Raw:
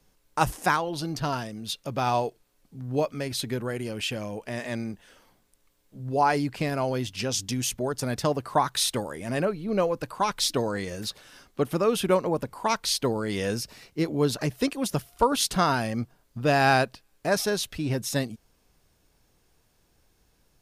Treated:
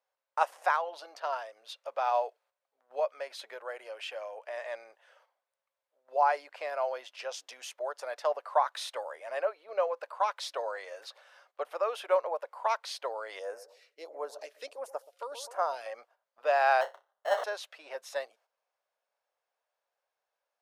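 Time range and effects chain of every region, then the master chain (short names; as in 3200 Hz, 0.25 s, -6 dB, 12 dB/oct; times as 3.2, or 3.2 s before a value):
13.39–15.86 narrowing echo 0.126 s, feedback 43%, band-pass 550 Hz, level -14.5 dB + phaser stages 2, 1.5 Hz, lowest notch 780–3500 Hz
16.81–17.44 low shelf 310 Hz -6 dB + sample-rate reducer 2400 Hz + flutter echo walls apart 5.3 m, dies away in 0.2 s
whole clip: elliptic high-pass 560 Hz, stop band 70 dB; gate -60 dBFS, range -9 dB; LPF 1100 Hz 6 dB/oct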